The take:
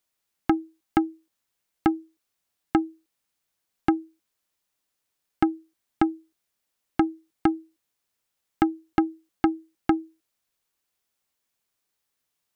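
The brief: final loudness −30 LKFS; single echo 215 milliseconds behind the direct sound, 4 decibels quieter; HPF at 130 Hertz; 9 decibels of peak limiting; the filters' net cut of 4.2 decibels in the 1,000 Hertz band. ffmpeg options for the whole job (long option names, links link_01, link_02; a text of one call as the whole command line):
ffmpeg -i in.wav -af "highpass=130,equalizer=frequency=1000:width_type=o:gain=-6,alimiter=limit=-17dB:level=0:latency=1,aecho=1:1:215:0.631,volume=3dB" out.wav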